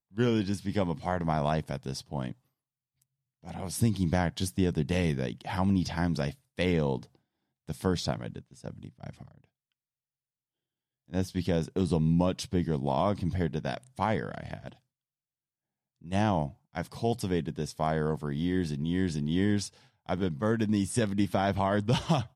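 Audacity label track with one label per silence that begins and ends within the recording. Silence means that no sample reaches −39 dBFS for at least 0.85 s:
2.320000	3.460000	silence
9.230000	11.130000	silence
14.720000	16.050000	silence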